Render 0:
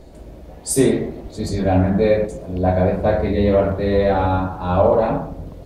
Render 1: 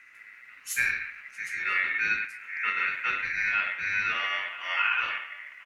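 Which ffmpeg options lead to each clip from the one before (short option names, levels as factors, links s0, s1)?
-filter_complex "[0:a]asplit=2[s0][s1];[s1]adelay=991.3,volume=0.141,highshelf=f=4000:g=-22.3[s2];[s0][s2]amix=inputs=2:normalize=0,aeval=exprs='val(0)*sin(2*PI*2000*n/s)':c=same,volume=0.355"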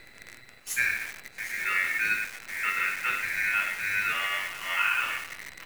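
-af "areverse,acompressor=mode=upward:threshold=0.0126:ratio=2.5,areverse,acrusher=bits=7:dc=4:mix=0:aa=0.000001"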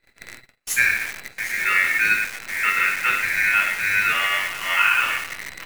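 -af "agate=range=0.0316:threshold=0.00447:ratio=16:detection=peak,volume=2.51"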